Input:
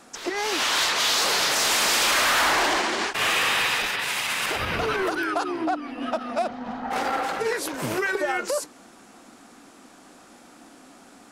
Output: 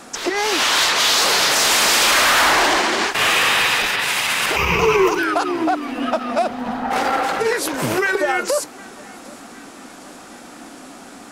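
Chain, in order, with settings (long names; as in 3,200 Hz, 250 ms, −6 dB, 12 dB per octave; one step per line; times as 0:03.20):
0:04.56–0:05.19: EQ curve with evenly spaced ripples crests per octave 0.77, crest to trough 15 dB
in parallel at 0 dB: downward compressor, threshold −35 dBFS, peak gain reduction 16.5 dB
on the sum: feedback echo with a high-pass in the loop 762 ms, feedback 60%, level −23 dB
level +4.5 dB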